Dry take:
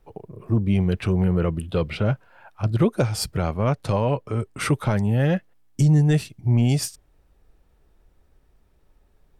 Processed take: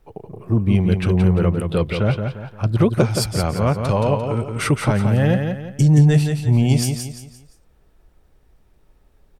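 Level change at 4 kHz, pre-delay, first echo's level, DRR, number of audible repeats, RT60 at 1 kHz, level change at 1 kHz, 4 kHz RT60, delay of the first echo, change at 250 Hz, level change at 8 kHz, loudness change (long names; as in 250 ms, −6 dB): +4.0 dB, no reverb audible, −6.0 dB, no reverb audible, 4, no reverb audible, +4.0 dB, no reverb audible, 173 ms, +4.0 dB, +4.0 dB, +4.0 dB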